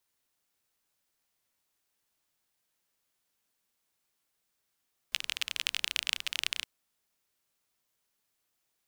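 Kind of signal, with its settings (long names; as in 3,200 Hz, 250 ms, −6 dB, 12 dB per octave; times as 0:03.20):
rain-like ticks over hiss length 1.52 s, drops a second 27, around 2,900 Hz, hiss −27 dB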